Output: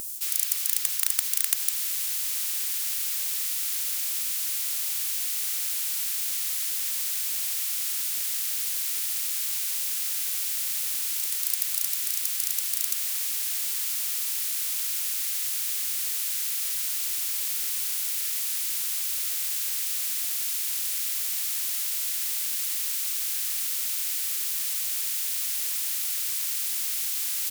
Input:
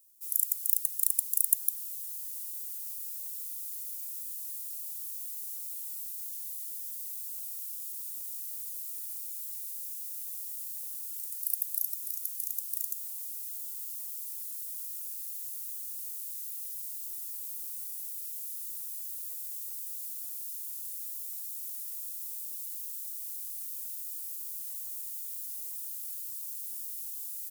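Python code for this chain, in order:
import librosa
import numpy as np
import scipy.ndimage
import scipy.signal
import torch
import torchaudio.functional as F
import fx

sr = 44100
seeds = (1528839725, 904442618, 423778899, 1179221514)

y = fx.spectral_comp(x, sr, ratio=4.0)
y = F.gain(torch.from_numpy(y), 1.0).numpy()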